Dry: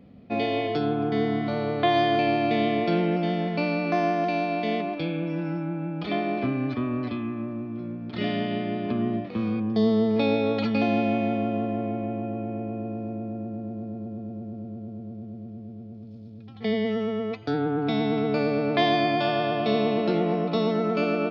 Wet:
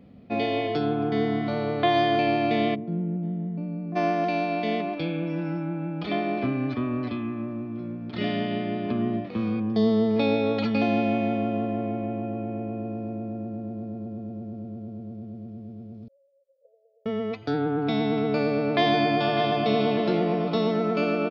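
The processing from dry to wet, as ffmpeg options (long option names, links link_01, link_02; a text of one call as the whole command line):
ffmpeg -i in.wav -filter_complex "[0:a]asplit=3[link_01][link_02][link_03];[link_01]afade=type=out:start_time=2.74:duration=0.02[link_04];[link_02]bandpass=frequency=170:width_type=q:width=2.1,afade=type=in:start_time=2.74:duration=0.02,afade=type=out:start_time=3.95:duration=0.02[link_05];[link_03]afade=type=in:start_time=3.95:duration=0.02[link_06];[link_04][link_05][link_06]amix=inputs=3:normalize=0,asettb=1/sr,asplit=3[link_07][link_08][link_09];[link_07]atrim=end=16.084[link_10];[link_08]atrim=start=16.08:end=17.06,asetpts=PTS-STARTPTS,afade=type=in:duration=0.004:curve=qsin,afade=type=out:start_time=0.976:duration=0.004:curve=qsin,asuperpass=centerf=550:order=8:qfactor=6.7[link_11];[link_09]atrim=start=17.056[link_12];[link_10][link_11]acrossfade=duration=0.004:curve1=hsin:curve2=qsin[link_13];[link_13][link_12]acrossfade=duration=0.004:curve1=qsin:curve2=hsin,asplit=2[link_14][link_15];[link_15]afade=type=in:start_time=18.23:duration=0.01,afade=type=out:start_time=19.36:duration=0.01,aecho=0:1:600|1200|1800|2400:0.375837|0.150335|0.060134|0.0240536[link_16];[link_14][link_16]amix=inputs=2:normalize=0" out.wav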